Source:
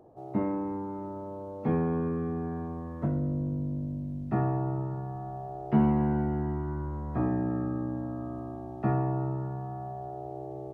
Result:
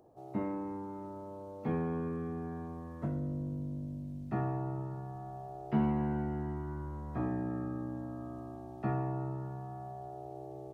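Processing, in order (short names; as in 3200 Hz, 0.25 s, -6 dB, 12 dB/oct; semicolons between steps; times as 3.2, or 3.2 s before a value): high shelf 2600 Hz +10 dB; gain -6.5 dB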